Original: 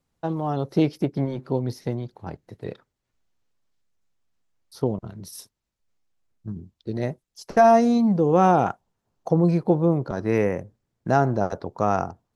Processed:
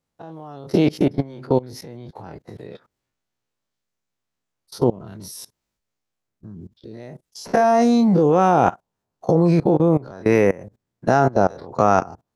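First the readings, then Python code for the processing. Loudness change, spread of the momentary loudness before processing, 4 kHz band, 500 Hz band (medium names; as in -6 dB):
+4.0 dB, 21 LU, +5.5 dB, +3.5 dB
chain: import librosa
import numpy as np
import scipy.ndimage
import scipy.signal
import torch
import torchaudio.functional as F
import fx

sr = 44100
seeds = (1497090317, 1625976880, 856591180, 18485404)

y = fx.spec_dilate(x, sr, span_ms=60)
y = fx.low_shelf(y, sr, hz=69.0, db=-9.0)
y = fx.level_steps(y, sr, step_db=22)
y = F.gain(torch.from_numpy(y), 7.0).numpy()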